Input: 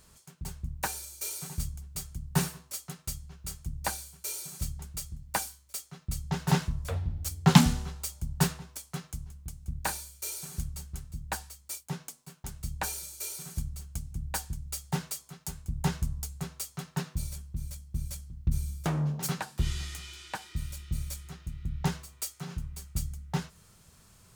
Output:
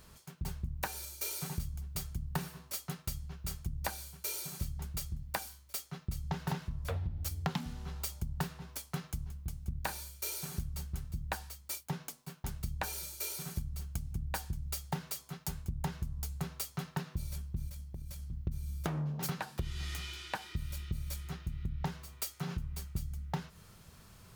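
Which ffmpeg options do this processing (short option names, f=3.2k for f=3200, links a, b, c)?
-filter_complex "[0:a]asettb=1/sr,asplit=3[a][b][c];[a]atrim=end=17.684[d];[b]atrim=start=17.68:end=18.27,asetpts=PTS-STARTPTS,afade=t=in:d=0.004:c=qsin,afade=t=out:st=0.586:d=0.004:c=qsin,acompressor=threshold=-41dB:ratio=16:attack=3.2:release=140:knee=1:detection=peak[e];[c]atrim=start=18.266[f];[d][e]acrossfade=d=0.004:c1=hsin:c2=qsin[g];[g][f]acrossfade=d=0.004:c1=qsin:c2=hsin,equalizer=f=7.9k:t=o:w=1:g=-7.5,acompressor=threshold=-35dB:ratio=16,volume=3dB"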